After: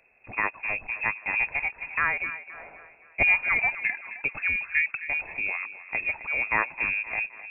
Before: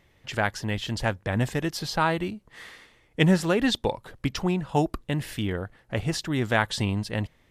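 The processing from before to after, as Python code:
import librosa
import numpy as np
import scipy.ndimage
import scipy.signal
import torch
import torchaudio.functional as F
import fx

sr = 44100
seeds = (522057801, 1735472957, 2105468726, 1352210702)

y = fx.freq_invert(x, sr, carrier_hz=2600)
y = fx.echo_thinned(y, sr, ms=261, feedback_pct=48, hz=230.0, wet_db=-14)
y = F.gain(torch.from_numpy(y), -2.0).numpy()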